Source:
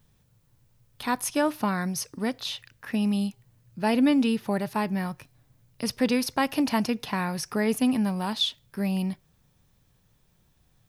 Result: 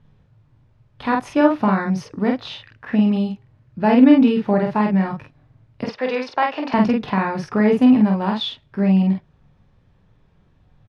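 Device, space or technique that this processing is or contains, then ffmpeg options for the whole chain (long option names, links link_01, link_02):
phone in a pocket: -filter_complex "[0:a]asettb=1/sr,asplit=3[link_01][link_02][link_03];[link_01]atrim=end=5.844[link_04];[link_02]atrim=start=5.84:end=6.74,asetpts=PTS-STARTPTS,afade=type=in:duration=0.004:curve=qsin,afade=type=out:start_time=0.896:duration=0.004:curve=qsin,acrossover=split=430 7100:gain=0.0708 1 0.0708[link_05][link_06][link_07];[link_05][link_06][link_07]amix=inputs=3:normalize=0[link_08];[link_03]atrim=start=6.736[link_09];[link_04][link_08]acrossfade=duration=0.004:curve1=hsin:curve2=qsin[link_10];[link_10][link_09]acrossfade=duration=0.004:curve1=qsin:curve2=hsin,lowpass=3600,highshelf=frequency=2500:gain=-10.5,aecho=1:1:20|47:0.355|0.708,volume=7.5dB"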